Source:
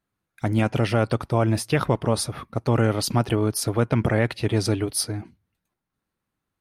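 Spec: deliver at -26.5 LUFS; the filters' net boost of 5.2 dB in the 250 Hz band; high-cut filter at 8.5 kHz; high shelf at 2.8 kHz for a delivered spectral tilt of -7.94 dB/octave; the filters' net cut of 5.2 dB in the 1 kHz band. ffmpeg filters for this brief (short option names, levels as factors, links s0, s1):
-af "lowpass=8500,equalizer=f=250:t=o:g=7,equalizer=f=1000:t=o:g=-7.5,highshelf=f=2800:g=-3.5,volume=0.562"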